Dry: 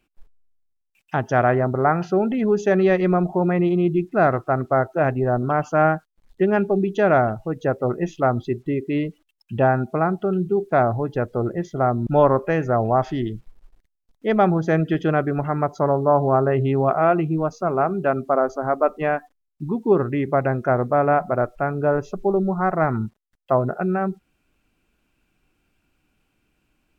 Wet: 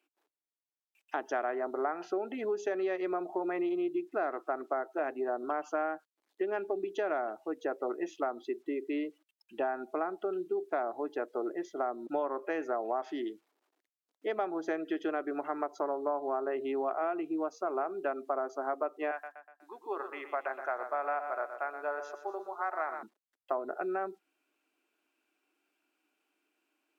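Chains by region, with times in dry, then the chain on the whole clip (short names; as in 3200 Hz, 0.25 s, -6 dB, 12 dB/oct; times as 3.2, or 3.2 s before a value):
19.11–23.03 HPF 810 Hz + feedback echo 0.122 s, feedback 47%, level -10 dB
whole clip: Chebyshev high-pass 300 Hz, order 4; notch 520 Hz, Q 12; compressor, threshold -22 dBFS; gain -7 dB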